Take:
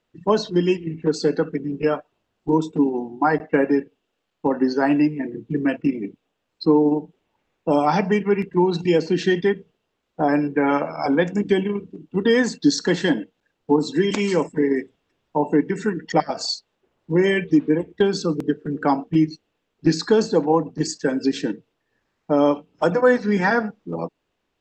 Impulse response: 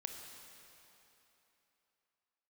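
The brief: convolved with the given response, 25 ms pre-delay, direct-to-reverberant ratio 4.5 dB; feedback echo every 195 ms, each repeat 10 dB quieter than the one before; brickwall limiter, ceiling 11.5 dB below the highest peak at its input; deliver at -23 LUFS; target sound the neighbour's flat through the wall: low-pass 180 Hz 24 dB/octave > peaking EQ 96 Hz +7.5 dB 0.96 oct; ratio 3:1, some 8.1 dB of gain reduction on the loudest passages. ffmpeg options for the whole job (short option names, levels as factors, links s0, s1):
-filter_complex "[0:a]acompressor=threshold=0.0708:ratio=3,alimiter=limit=0.075:level=0:latency=1,aecho=1:1:195|390|585|780:0.316|0.101|0.0324|0.0104,asplit=2[s0][s1];[1:a]atrim=start_sample=2205,adelay=25[s2];[s1][s2]afir=irnorm=-1:irlink=0,volume=0.75[s3];[s0][s3]amix=inputs=2:normalize=0,lowpass=f=180:w=0.5412,lowpass=f=180:w=1.3066,equalizer=f=96:t=o:w=0.96:g=7.5,volume=6.31"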